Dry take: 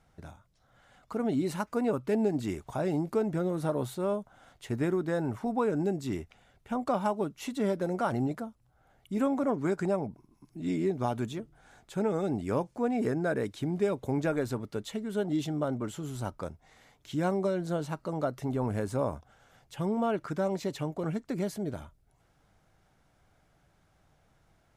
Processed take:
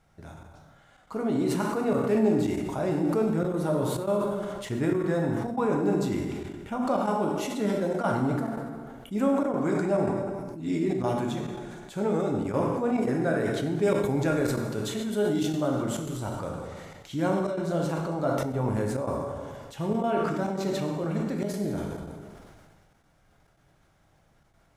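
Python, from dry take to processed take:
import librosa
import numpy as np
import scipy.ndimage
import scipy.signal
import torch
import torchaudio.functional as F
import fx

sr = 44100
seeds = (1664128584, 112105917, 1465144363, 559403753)

y = fx.high_shelf(x, sr, hz=4600.0, db=5.0, at=(13.83, 15.98))
y = fx.rev_plate(y, sr, seeds[0], rt60_s=1.4, hf_ratio=0.8, predelay_ms=0, drr_db=0.5)
y = fx.step_gate(y, sr, bpm=140, pattern='xxxx.xxxx.xxxx', floor_db=-12.0, edge_ms=4.5)
y = fx.sustainer(y, sr, db_per_s=28.0)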